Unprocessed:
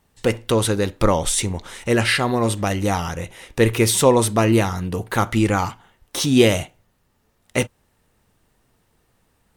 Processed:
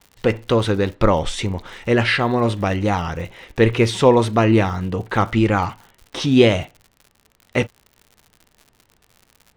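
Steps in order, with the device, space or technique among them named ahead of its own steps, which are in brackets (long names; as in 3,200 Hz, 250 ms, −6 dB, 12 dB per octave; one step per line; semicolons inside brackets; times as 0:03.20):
lo-fi chain (low-pass filter 3,700 Hz 12 dB per octave; tape wow and flutter; surface crackle 99 per second −36 dBFS)
level +1.5 dB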